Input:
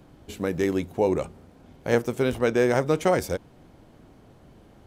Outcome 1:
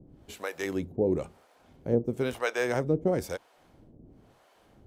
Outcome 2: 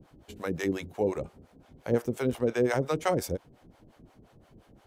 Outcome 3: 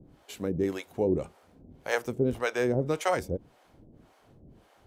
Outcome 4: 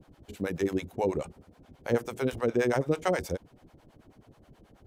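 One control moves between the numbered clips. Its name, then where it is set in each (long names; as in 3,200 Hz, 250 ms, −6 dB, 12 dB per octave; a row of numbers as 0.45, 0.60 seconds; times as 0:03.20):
two-band tremolo in antiphase, speed: 1, 5.7, 1.8, 9.3 Hertz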